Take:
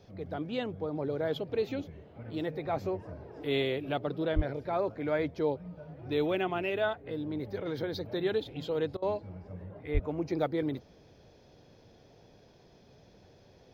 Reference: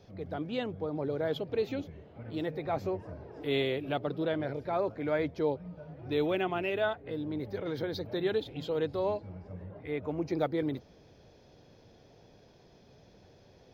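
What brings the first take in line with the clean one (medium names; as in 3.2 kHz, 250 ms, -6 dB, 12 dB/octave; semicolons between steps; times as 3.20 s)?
4.35–4.47 s: high-pass 140 Hz 24 dB/octave; 9.93–10.05 s: high-pass 140 Hz 24 dB/octave; interpolate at 8.97 s, 51 ms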